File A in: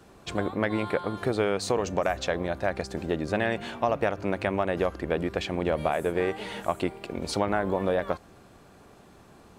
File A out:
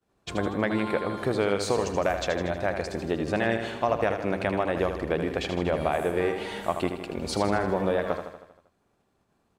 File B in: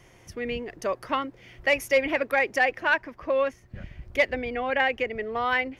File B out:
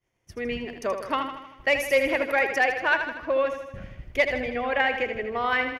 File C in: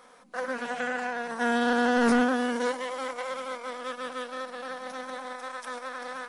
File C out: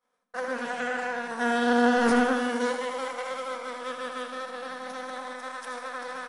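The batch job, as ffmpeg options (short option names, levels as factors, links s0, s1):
-af "agate=range=0.0224:threshold=0.01:ratio=3:detection=peak,aecho=1:1:79|158|237|316|395|474|553:0.398|0.227|0.129|0.0737|0.042|0.024|0.0137"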